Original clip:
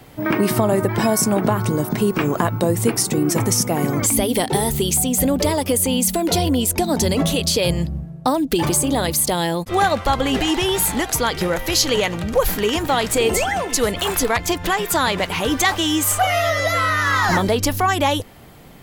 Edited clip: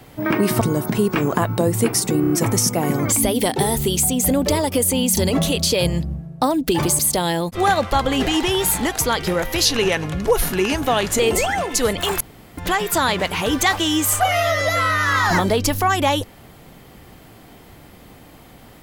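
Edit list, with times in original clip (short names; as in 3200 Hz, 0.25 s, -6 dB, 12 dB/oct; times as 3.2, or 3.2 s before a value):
0.61–1.64 cut
3.24 stutter 0.03 s, 4 plays
6.11–7.01 cut
8.83–9.13 cut
11.79–13.18 speed 90%
14.19–14.56 room tone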